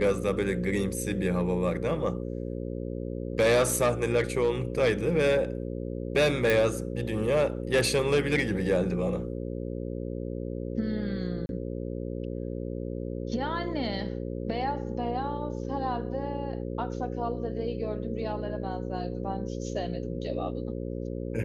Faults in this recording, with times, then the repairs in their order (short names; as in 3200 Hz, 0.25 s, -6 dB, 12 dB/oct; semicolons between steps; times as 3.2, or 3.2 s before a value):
buzz 60 Hz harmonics 9 -34 dBFS
6.5 pop
11.46–11.49 gap 31 ms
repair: de-click; de-hum 60 Hz, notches 9; interpolate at 11.46, 31 ms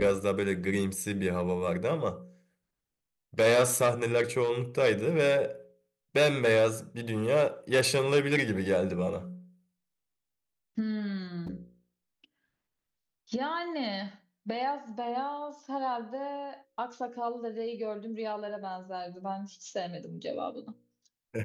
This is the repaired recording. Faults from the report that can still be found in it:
none